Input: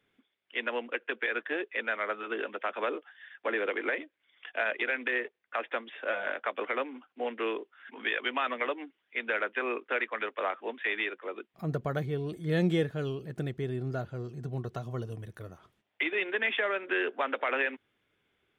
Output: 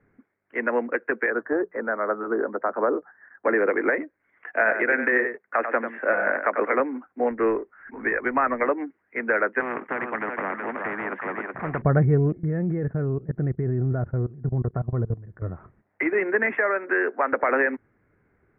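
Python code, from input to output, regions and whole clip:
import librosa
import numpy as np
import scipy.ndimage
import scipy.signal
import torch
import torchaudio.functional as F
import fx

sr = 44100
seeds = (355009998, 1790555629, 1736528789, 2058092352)

y = fx.chain(x, sr, fx.lowpass(hz=1400.0, slope=24),
    fx.hum_notches(base_hz=60, count=3), at=(1.3, 3.45))
y = fx.chain(y, sr, fx.highpass(hz=110.0, slope=12),
    fx.high_shelf(hz=2600.0, db=5.5),
    fx.echo_single(ms=95, db=-8.0), at=(4.49, 6.8))
y = fx.chain(y, sr, fx.law_mismatch(coded='mu'),
    fx.lowpass(hz=2800.0, slope=24),
    fx.upward_expand(threshold_db=-44.0, expansion=1.5), at=(7.31, 8.65))
y = fx.chain(y, sr, fx.highpass(hz=560.0, slope=6),
    fx.echo_single(ms=373, db=-12.5),
    fx.spectral_comp(ratio=4.0), at=(9.6, 11.82))
y = fx.chain(y, sr, fx.level_steps(step_db=19),
    fx.peak_eq(hz=4700.0, db=-12.0, octaves=1.2), at=(12.32, 15.42))
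y = fx.chain(y, sr, fx.brickwall_lowpass(high_hz=3600.0),
    fx.low_shelf(hz=320.0, db=-10.5), at=(16.58, 17.33))
y = scipy.signal.sosfilt(scipy.signal.butter(8, 2000.0, 'lowpass', fs=sr, output='sos'), y)
y = fx.low_shelf(y, sr, hz=240.0, db=10.5)
y = F.gain(torch.from_numpy(y), 8.0).numpy()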